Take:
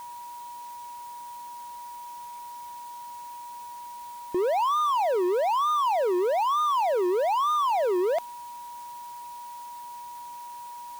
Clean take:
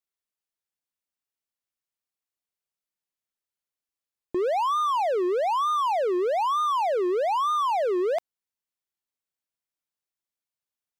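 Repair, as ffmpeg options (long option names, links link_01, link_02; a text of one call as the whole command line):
ffmpeg -i in.wav -af "bandreject=frequency=960:width=30,afwtdn=0.0025" out.wav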